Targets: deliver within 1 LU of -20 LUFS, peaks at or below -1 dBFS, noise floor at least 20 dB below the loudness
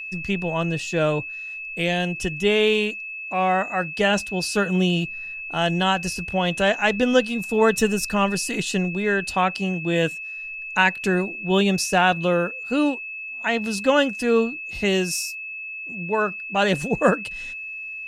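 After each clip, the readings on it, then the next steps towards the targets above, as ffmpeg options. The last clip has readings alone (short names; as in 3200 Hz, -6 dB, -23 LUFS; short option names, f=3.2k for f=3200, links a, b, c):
steady tone 2600 Hz; tone level -31 dBFS; loudness -22.5 LUFS; peak -4.0 dBFS; loudness target -20.0 LUFS
-> -af "bandreject=f=2.6k:w=30"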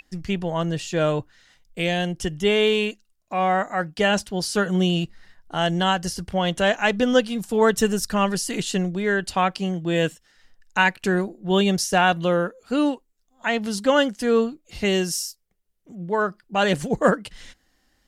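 steady tone none; loudness -22.5 LUFS; peak -4.5 dBFS; loudness target -20.0 LUFS
-> -af "volume=2.5dB"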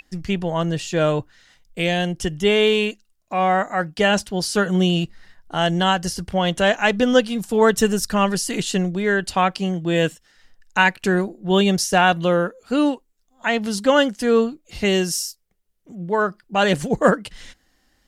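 loudness -20.0 LUFS; peak -2.0 dBFS; noise floor -65 dBFS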